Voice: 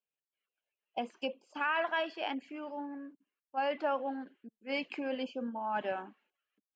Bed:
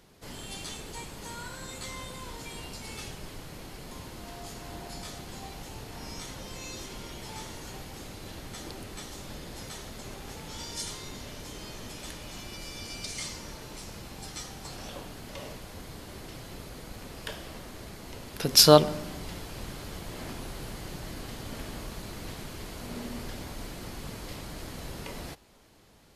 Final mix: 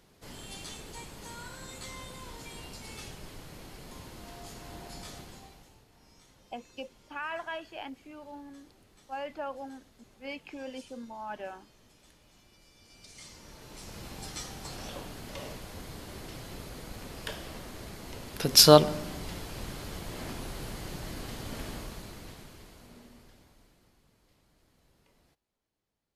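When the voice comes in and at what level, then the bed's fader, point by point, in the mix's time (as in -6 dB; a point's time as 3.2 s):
5.55 s, -5.0 dB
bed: 5.19 s -3.5 dB
5.87 s -19.5 dB
12.77 s -19.5 dB
14.05 s 0 dB
21.7 s 0 dB
24.07 s -27.5 dB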